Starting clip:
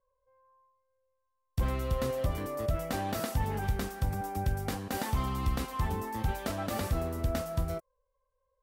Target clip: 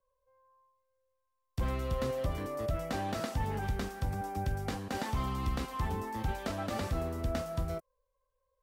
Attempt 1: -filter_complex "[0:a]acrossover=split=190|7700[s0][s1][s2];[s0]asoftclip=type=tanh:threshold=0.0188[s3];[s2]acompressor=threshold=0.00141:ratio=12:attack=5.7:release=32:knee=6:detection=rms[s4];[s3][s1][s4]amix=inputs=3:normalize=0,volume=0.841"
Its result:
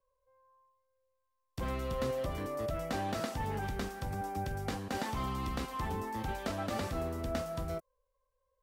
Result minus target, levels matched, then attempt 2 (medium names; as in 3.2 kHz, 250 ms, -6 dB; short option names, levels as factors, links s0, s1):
saturation: distortion +12 dB
-filter_complex "[0:a]acrossover=split=190|7700[s0][s1][s2];[s0]asoftclip=type=tanh:threshold=0.0668[s3];[s2]acompressor=threshold=0.00141:ratio=12:attack=5.7:release=32:knee=6:detection=rms[s4];[s3][s1][s4]amix=inputs=3:normalize=0,volume=0.841"